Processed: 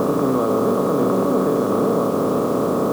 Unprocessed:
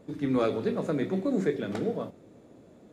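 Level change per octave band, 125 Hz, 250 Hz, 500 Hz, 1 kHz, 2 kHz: +9.5, +10.5, +12.5, +17.0, +5.0 decibels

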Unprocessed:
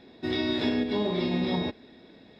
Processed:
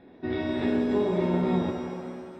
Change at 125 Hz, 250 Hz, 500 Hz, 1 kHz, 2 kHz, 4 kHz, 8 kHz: +3.0 dB, +1.5 dB, +3.5 dB, +2.5 dB, −2.5 dB, −11.0 dB, can't be measured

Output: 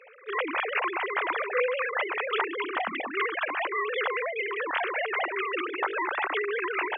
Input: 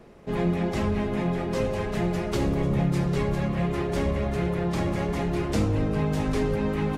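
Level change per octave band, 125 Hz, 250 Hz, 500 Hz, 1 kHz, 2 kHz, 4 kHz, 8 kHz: below −40 dB, −15.5 dB, −2.5 dB, +4.5 dB, +10.0 dB, +3.0 dB, below −35 dB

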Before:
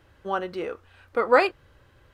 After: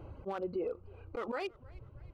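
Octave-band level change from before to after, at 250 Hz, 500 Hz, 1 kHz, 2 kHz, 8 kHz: −7.5 dB, −13.5 dB, −17.5 dB, −19.5 dB, can't be measured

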